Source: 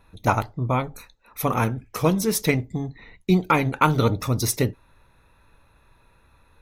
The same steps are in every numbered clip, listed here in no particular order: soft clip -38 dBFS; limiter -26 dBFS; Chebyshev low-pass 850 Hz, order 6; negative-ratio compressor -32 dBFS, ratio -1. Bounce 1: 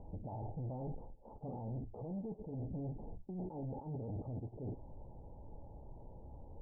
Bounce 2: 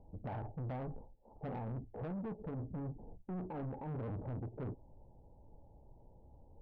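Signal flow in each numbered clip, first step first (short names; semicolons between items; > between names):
negative-ratio compressor > limiter > soft clip > Chebyshev low-pass; limiter > Chebyshev low-pass > negative-ratio compressor > soft clip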